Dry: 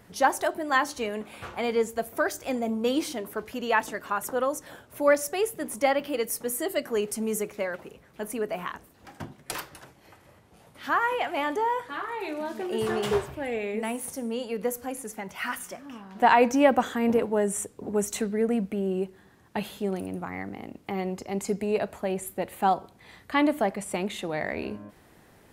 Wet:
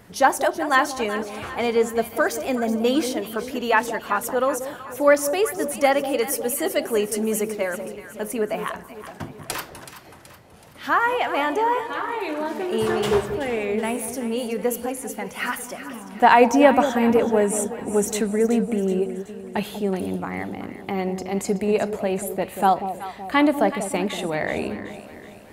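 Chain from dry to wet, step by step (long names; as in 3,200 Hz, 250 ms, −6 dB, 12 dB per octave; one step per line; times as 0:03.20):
delay that swaps between a low-pass and a high-pass 188 ms, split 820 Hz, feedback 69%, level −9 dB
level +5 dB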